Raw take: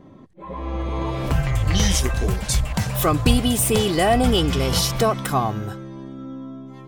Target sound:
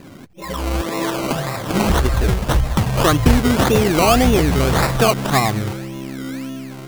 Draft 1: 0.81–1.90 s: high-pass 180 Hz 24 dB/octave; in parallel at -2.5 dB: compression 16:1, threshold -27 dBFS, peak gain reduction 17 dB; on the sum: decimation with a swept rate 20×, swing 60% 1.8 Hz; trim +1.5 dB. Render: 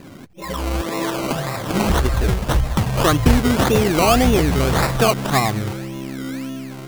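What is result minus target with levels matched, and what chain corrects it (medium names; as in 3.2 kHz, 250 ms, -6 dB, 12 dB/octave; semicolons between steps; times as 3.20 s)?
compression: peak gain reduction +5.5 dB
0.81–1.90 s: high-pass 180 Hz 24 dB/octave; in parallel at -2.5 dB: compression 16:1, threshold -21 dBFS, peak gain reduction 11.5 dB; on the sum: decimation with a swept rate 20×, swing 60% 1.8 Hz; trim +1.5 dB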